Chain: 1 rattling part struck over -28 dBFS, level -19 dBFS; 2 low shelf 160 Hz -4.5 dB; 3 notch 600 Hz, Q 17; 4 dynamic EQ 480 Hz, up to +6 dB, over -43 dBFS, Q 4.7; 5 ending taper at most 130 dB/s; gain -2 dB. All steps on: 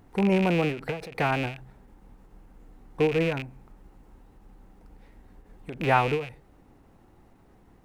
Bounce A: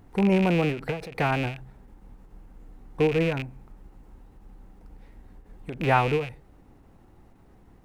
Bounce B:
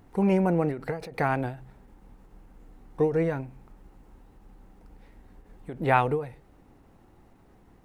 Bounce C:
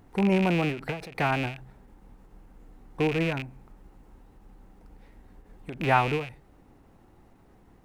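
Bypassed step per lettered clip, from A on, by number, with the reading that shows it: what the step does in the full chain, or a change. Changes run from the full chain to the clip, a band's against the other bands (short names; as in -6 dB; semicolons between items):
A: 2, 125 Hz band +2.5 dB; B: 1, 2 kHz band -3.5 dB; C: 4, 500 Hz band -3.0 dB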